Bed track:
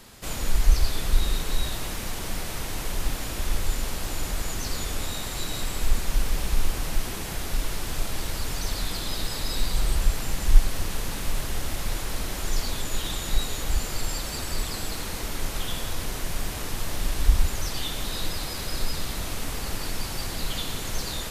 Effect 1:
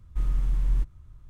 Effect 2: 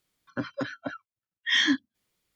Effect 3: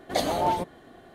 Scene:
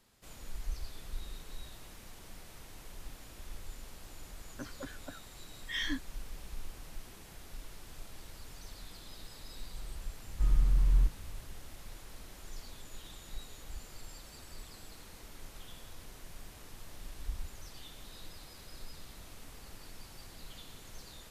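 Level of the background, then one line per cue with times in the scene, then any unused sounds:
bed track -19.5 dB
4.22 s: add 2 -13 dB
10.24 s: add 1 -1.5 dB
not used: 3

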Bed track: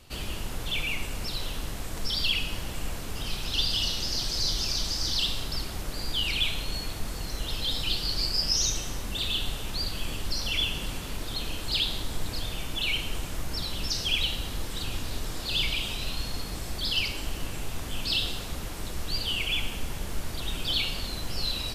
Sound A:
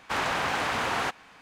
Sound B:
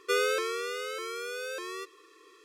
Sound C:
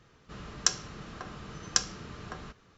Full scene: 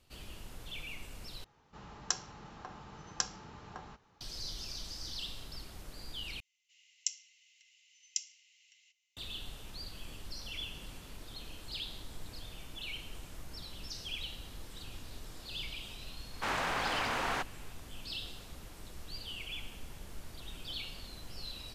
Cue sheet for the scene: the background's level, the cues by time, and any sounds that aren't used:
bed track -14 dB
1.44 s: replace with C -8 dB + peaking EQ 850 Hz +14.5 dB 0.32 oct
6.40 s: replace with C -6 dB + rippled Chebyshev high-pass 2 kHz, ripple 9 dB
16.32 s: add A -6 dB
not used: B

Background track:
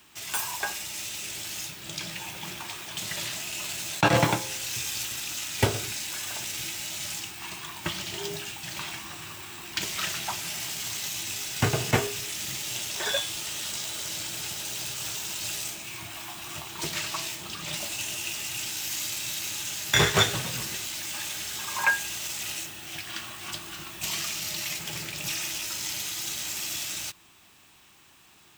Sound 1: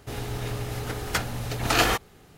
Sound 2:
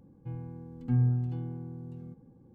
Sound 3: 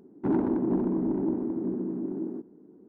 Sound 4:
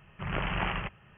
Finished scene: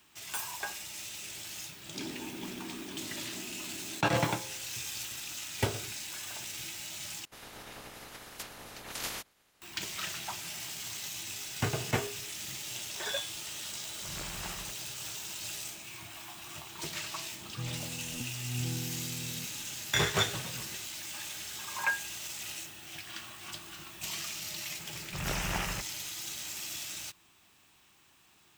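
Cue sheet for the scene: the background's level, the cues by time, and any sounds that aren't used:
background track -7 dB
1.71 s: add 3 -17 dB
7.25 s: replace with 1 -16.5 dB + spectral peaks clipped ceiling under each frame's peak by 22 dB
13.83 s: add 4 -12.5 dB
17.32 s: add 2 -4 dB + compressor with a negative ratio -33 dBFS
24.93 s: add 4 -3 dB + peaking EQ 1.1 kHz -4 dB 0.22 oct

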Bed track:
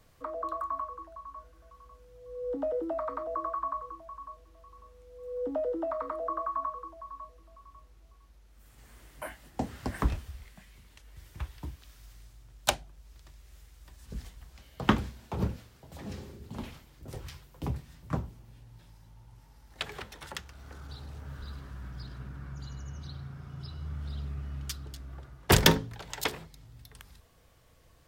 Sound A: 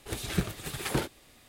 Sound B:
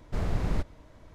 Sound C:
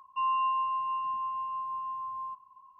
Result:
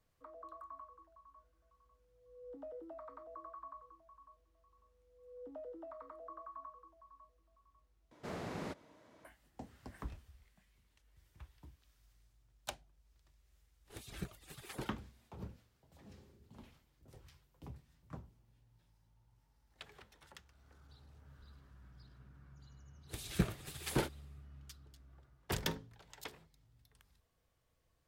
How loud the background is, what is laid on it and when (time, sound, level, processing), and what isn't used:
bed track -17 dB
8.11 s: replace with B -5.5 dB + high-pass 220 Hz
13.84 s: add A -15 dB, fades 0.05 s + reverb removal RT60 0.6 s
23.01 s: add A -7.5 dB, fades 0.10 s + three bands expanded up and down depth 100%
not used: C

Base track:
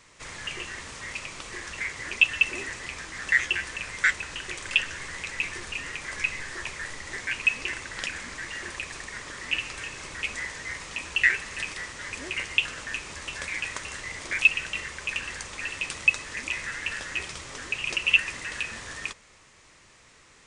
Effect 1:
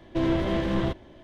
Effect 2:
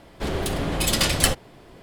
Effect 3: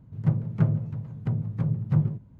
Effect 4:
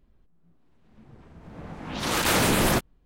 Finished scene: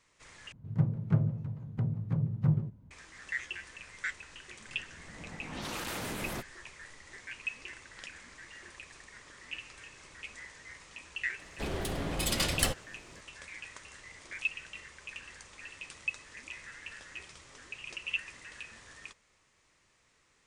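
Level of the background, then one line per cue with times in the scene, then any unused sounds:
base track -14 dB
0.52 s: replace with 3 -4.5 dB
3.62 s: add 4 -7.5 dB + compression, threshold -27 dBFS
11.39 s: add 2 -9 dB
not used: 1

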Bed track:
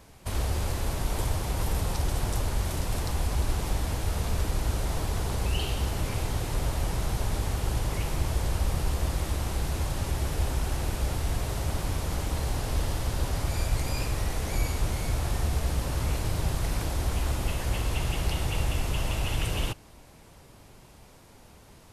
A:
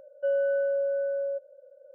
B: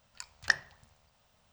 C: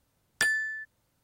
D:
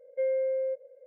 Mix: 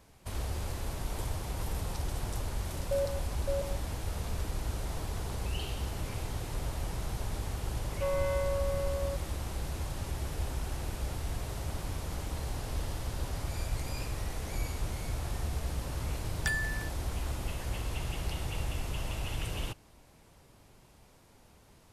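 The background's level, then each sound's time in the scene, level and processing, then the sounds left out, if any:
bed track -7 dB
2.49 s: add A -1.5 dB + stepped vowel filter 7.1 Hz
7.78 s: add A -6.5 dB + tracing distortion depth 0.18 ms
16.05 s: add C -6.5 dB
not used: B, D

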